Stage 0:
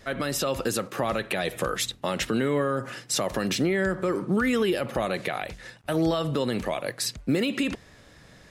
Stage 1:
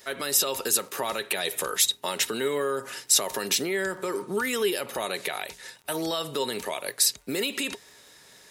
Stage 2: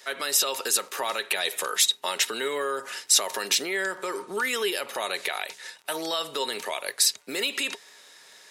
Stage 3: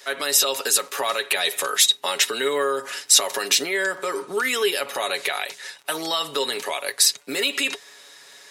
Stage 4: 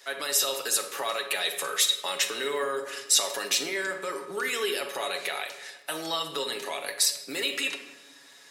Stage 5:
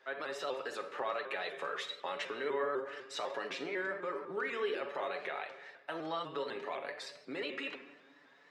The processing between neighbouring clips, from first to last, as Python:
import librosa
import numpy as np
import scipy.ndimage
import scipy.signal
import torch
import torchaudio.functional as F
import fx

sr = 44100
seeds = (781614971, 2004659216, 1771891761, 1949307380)

y1 = fx.riaa(x, sr, side='recording')
y1 = fx.small_body(y1, sr, hz=(410.0, 920.0, 3800.0), ring_ms=95, db=11)
y1 = fx.dmg_crackle(y1, sr, seeds[0], per_s=11.0, level_db=-36.0)
y1 = y1 * 10.0 ** (-3.0 / 20.0)
y2 = fx.weighting(y1, sr, curve='A')
y2 = y2 * 10.0 ** (1.5 / 20.0)
y3 = y2 + 0.47 * np.pad(y2, (int(7.1 * sr / 1000.0), 0))[:len(y2)]
y3 = y3 * 10.0 ** (3.5 / 20.0)
y4 = fx.room_shoebox(y3, sr, seeds[1], volume_m3=580.0, walls='mixed', distance_m=0.71)
y4 = y4 * 10.0 ** (-7.0 / 20.0)
y5 = scipy.signal.sosfilt(scipy.signal.butter(2, 1800.0, 'lowpass', fs=sr, output='sos'), y4)
y5 = fx.vibrato_shape(y5, sr, shape='saw_up', rate_hz=4.0, depth_cents=100.0)
y5 = y5 * 10.0 ** (-4.5 / 20.0)